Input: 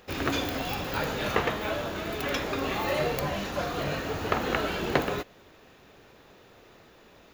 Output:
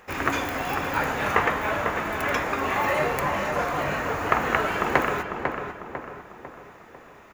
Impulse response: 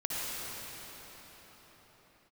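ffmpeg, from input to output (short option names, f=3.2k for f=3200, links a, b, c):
-filter_complex "[0:a]equalizer=f=1k:t=o:w=1:g=8,equalizer=f=2k:t=o:w=1:g=8,equalizer=f=4k:t=o:w=1:g=-8,equalizer=f=8k:t=o:w=1:g=6,asplit=2[a][b];[b]adelay=498,lowpass=f=2.1k:p=1,volume=-5dB,asplit=2[c][d];[d]adelay=498,lowpass=f=2.1k:p=1,volume=0.49,asplit=2[e][f];[f]adelay=498,lowpass=f=2.1k:p=1,volume=0.49,asplit=2[g][h];[h]adelay=498,lowpass=f=2.1k:p=1,volume=0.49,asplit=2[i][j];[j]adelay=498,lowpass=f=2.1k:p=1,volume=0.49,asplit=2[k][l];[l]adelay=498,lowpass=f=2.1k:p=1,volume=0.49[m];[c][e][g][i][k][m]amix=inputs=6:normalize=0[n];[a][n]amix=inputs=2:normalize=0,volume=-1dB"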